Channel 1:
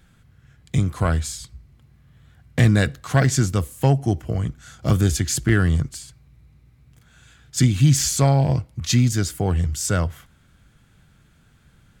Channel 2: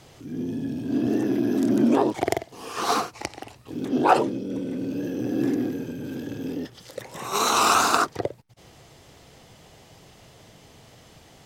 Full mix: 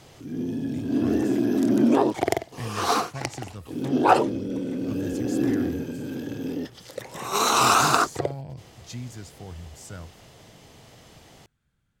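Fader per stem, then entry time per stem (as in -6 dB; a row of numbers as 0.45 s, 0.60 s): -19.0 dB, +0.5 dB; 0.00 s, 0.00 s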